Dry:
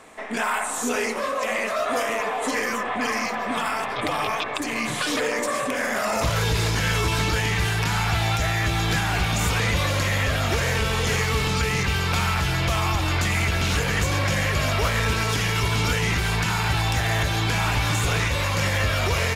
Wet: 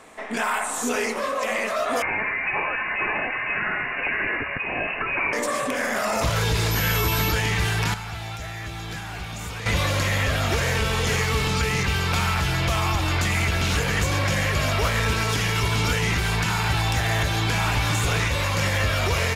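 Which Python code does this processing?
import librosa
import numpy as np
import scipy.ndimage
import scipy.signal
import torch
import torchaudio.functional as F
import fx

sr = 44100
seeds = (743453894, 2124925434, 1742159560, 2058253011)

y = fx.freq_invert(x, sr, carrier_hz=2800, at=(2.02, 5.33))
y = fx.dmg_tone(y, sr, hz=12000.0, level_db=-29.0, at=(6.7, 7.31), fade=0.02)
y = fx.edit(y, sr, fx.clip_gain(start_s=7.94, length_s=1.72, db=-10.5), tone=tone)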